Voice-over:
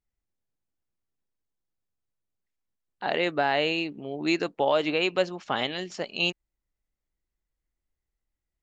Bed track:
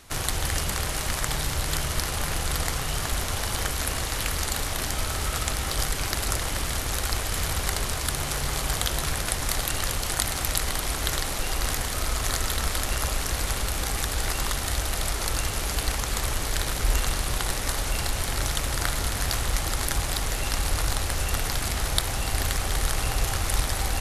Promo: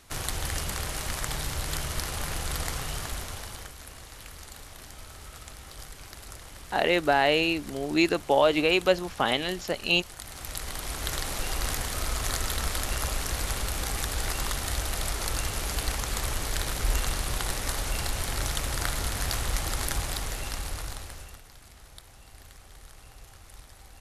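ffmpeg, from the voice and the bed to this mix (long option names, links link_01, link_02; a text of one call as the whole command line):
ffmpeg -i stem1.wav -i stem2.wav -filter_complex "[0:a]adelay=3700,volume=2.5dB[link_01];[1:a]volume=9.5dB,afade=type=out:start_time=2.82:duration=0.92:silence=0.237137,afade=type=in:start_time=10.18:duration=1.19:silence=0.199526,afade=type=out:start_time=19.87:duration=1.55:silence=0.0891251[link_02];[link_01][link_02]amix=inputs=2:normalize=0" out.wav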